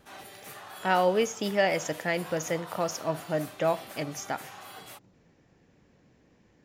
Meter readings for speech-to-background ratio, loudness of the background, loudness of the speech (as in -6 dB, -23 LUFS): 15.0 dB, -44.5 LUFS, -29.5 LUFS